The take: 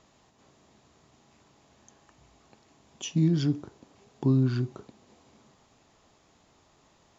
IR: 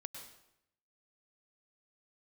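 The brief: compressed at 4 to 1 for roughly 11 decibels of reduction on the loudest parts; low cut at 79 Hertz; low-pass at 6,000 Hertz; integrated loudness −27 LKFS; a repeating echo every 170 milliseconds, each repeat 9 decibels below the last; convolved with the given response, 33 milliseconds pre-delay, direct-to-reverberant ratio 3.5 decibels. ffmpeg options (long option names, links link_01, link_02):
-filter_complex "[0:a]highpass=79,lowpass=6000,acompressor=threshold=-32dB:ratio=4,aecho=1:1:170|340|510|680:0.355|0.124|0.0435|0.0152,asplit=2[link_01][link_02];[1:a]atrim=start_sample=2205,adelay=33[link_03];[link_02][link_03]afir=irnorm=-1:irlink=0,volume=0dB[link_04];[link_01][link_04]amix=inputs=2:normalize=0,volume=9dB"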